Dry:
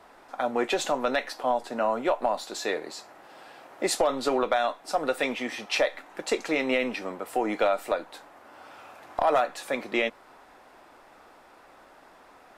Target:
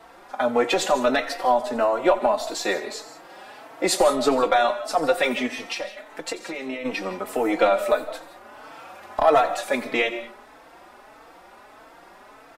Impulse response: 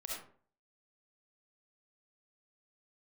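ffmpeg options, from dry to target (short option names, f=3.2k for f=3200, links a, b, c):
-filter_complex "[0:a]asplit=3[a][b][c];[a]afade=t=out:st=5.46:d=0.02[d];[b]acompressor=threshold=-33dB:ratio=10,afade=t=in:st=5.46:d=0.02,afade=t=out:st=6.84:d=0.02[e];[c]afade=t=in:st=6.84:d=0.02[f];[d][e][f]amix=inputs=3:normalize=0,asplit=2[g][h];[1:a]atrim=start_sample=2205,highshelf=f=11k:g=11.5,adelay=88[i];[h][i]afir=irnorm=-1:irlink=0,volume=-12dB[j];[g][j]amix=inputs=2:normalize=0,asplit=2[k][l];[l]adelay=4,afreqshift=1.6[m];[k][m]amix=inputs=2:normalize=1,volume=8dB"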